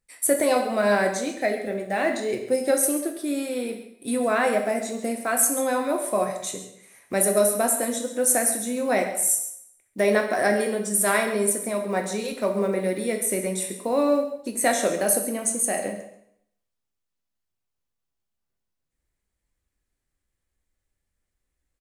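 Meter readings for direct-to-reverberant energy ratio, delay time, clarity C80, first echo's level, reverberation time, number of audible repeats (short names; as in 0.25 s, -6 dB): 3.0 dB, 0.136 s, 9.0 dB, -14.0 dB, 0.70 s, 1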